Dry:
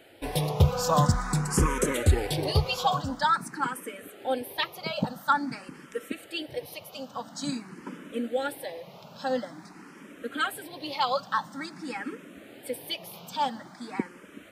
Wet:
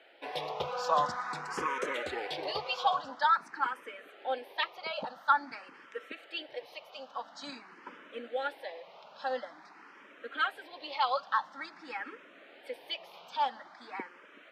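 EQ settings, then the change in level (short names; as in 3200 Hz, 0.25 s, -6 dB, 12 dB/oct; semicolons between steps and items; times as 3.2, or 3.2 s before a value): HPF 660 Hz 12 dB/oct; air absorption 240 m; high shelf 6600 Hz +5.5 dB; 0.0 dB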